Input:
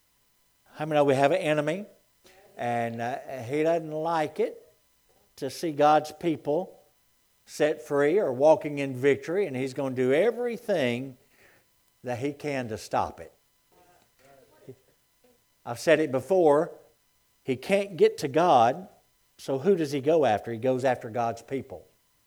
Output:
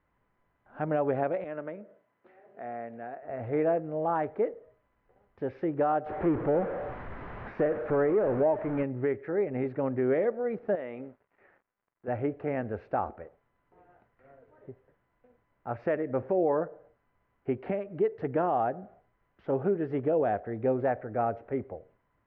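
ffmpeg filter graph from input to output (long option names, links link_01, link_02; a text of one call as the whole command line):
ffmpeg -i in.wav -filter_complex "[0:a]asettb=1/sr,asplit=3[link_01][link_02][link_03];[link_01]atrim=end=1.444[link_04];[link_02]atrim=start=1.44:end=3.23,asetpts=PTS-STARTPTS,afade=type=in:duration=0.004:curve=qsin,afade=type=out:start_time=1.786:duration=0.004:curve=qsin,acompressor=threshold=-51dB:ratio=1.5:attack=3.2:release=140:knee=1:detection=peak,highpass=190,lowpass=6500[link_05];[link_03]atrim=start=3.226[link_06];[link_04][link_05]acrossfade=duration=0.004:curve1=hsin:curve2=qsin[link_07];[link_07][link_06]acrossfade=duration=0.004:curve1=qsin:curve2=hsin,asettb=1/sr,asplit=3[link_08][link_09][link_10];[link_08]atrim=end=6.064[link_11];[link_09]atrim=start=6.06:end=8.83,asetpts=PTS-STARTPTS,afade=type=in:duration=0.004:curve=qsin,afade=type=out:start_time=2.766:duration=0.004:curve=qsin,aeval=exprs='val(0)+0.5*0.0447*sgn(val(0))':channel_layout=same,lowpass=frequency=2300:poles=1[link_12];[link_10]atrim=start=8.826[link_13];[link_11][link_12]acrossfade=duration=0.004:curve1=hsin:curve2=qsin[link_14];[link_14][link_13]acrossfade=duration=0.004:curve1=qsin:curve2=hsin,asettb=1/sr,asplit=3[link_15][link_16][link_17];[link_15]atrim=end=10.754[link_18];[link_16]atrim=start=10.75:end=12.08,asetpts=PTS-STARTPTS,afade=type=in:duration=0.004:curve=qsin,afade=type=out:start_time=1.326:duration=0.004:curve=qsin,bass=frequency=250:gain=-13,treble=frequency=4000:gain=-3,acompressor=threshold=-32dB:ratio=4:attack=3.2:release=140:knee=1:detection=peak,aeval=exprs='val(0)*gte(abs(val(0)),0.00106)':channel_layout=same[link_19];[link_17]atrim=start=12.076[link_20];[link_18][link_19]acrossfade=duration=0.004:curve1=hsin:curve2=qsin[link_21];[link_21][link_20]acrossfade=duration=0.004:curve1=qsin:curve2=hsin,alimiter=limit=-17.5dB:level=0:latency=1:release=353,lowpass=frequency=1800:width=0.5412,lowpass=frequency=1800:width=1.3066" out.wav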